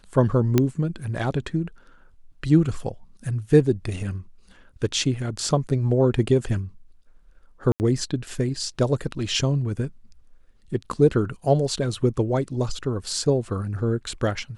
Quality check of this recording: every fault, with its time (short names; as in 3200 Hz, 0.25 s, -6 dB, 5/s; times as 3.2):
0.58 pop -5 dBFS
7.72–7.8 gap 79 ms